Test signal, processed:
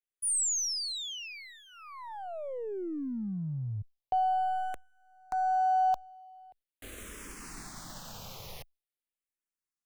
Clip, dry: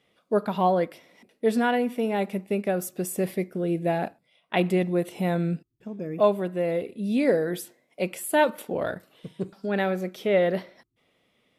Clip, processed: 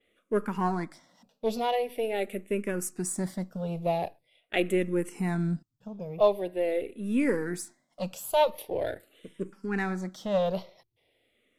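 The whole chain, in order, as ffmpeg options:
-filter_complex "[0:a]aeval=exprs='if(lt(val(0),0),0.708*val(0),val(0))':c=same,adynamicequalizer=threshold=0.00282:dfrequency=8200:dqfactor=0.84:tfrequency=8200:tqfactor=0.84:attack=5:release=100:ratio=0.375:range=3:mode=boostabove:tftype=bell,asplit=2[a][b];[b]afreqshift=-0.44[c];[a][c]amix=inputs=2:normalize=1"

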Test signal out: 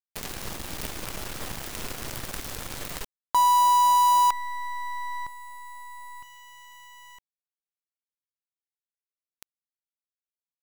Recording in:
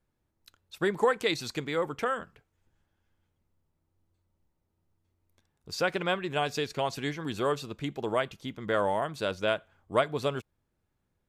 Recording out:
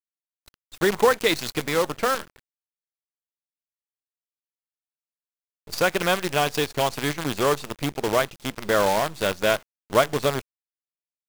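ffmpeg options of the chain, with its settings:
-af "acrusher=bits=6:dc=4:mix=0:aa=0.000001,volume=6.5dB"

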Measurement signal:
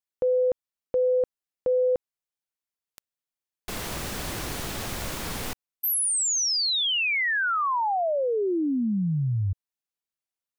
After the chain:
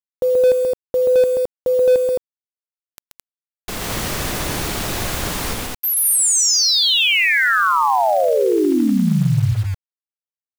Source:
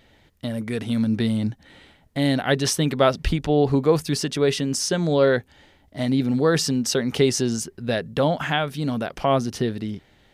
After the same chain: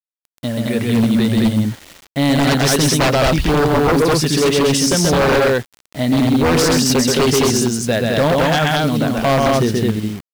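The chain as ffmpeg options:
-af "aecho=1:1:131.2|215.7:0.708|0.794,aeval=exprs='0.188*(abs(mod(val(0)/0.188+3,4)-2)-1)':c=same,acrusher=bits=6:mix=0:aa=0.000001,volume=6dB"

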